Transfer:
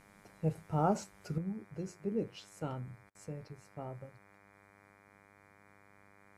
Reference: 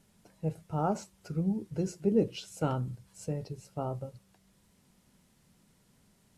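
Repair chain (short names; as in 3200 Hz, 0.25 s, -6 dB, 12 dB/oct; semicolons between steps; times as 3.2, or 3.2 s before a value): de-hum 100.4 Hz, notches 24; interpolate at 3.1, 48 ms; gain 0 dB, from 1.38 s +9 dB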